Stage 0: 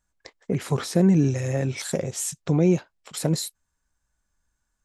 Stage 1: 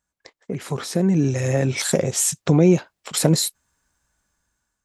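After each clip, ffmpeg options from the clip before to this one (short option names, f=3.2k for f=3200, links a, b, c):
-af "acompressor=threshold=-26dB:ratio=1.5,highpass=f=100:p=1,dynaudnorm=f=470:g=5:m=13dB,volume=-1dB"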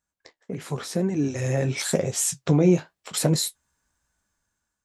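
-af "flanger=delay=7.7:depth=9.6:regen=-48:speed=0.91:shape=triangular"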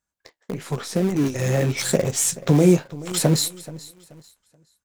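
-filter_complex "[0:a]aecho=1:1:430|860|1290:0.141|0.0438|0.0136,asplit=2[a][b];[b]acrusher=bits=5:dc=4:mix=0:aa=0.000001,volume=-7dB[c];[a][c]amix=inputs=2:normalize=0"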